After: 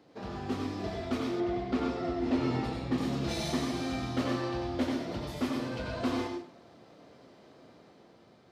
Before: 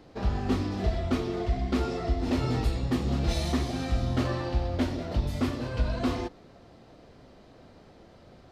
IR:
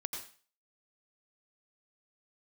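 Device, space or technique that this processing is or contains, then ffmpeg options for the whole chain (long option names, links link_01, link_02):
far laptop microphone: -filter_complex "[1:a]atrim=start_sample=2205[link_01];[0:a][link_01]afir=irnorm=-1:irlink=0,highpass=150,dynaudnorm=framelen=280:gausssize=7:maxgain=3.5dB,asettb=1/sr,asplit=3[link_02][link_03][link_04];[link_02]atrim=end=1.404[link_05];[link_03]atrim=start=1.4:end=2.98,asetpts=PTS-STARTPTS,afade=type=in:duration=0.004:curve=qsin,afade=type=out:start_time=1.576:duration=0.004:curve=qsin,aemphasis=mode=reproduction:type=50fm[link_06];[link_04]atrim=start=2.976[link_07];[link_05][link_06]acrossfade=duration=0.004:curve1=hsin:curve2=qsin[link_08];[link_08][link_07]acrossfade=duration=0.004:curve1=qsin:curve2=hsin,volume=-5dB"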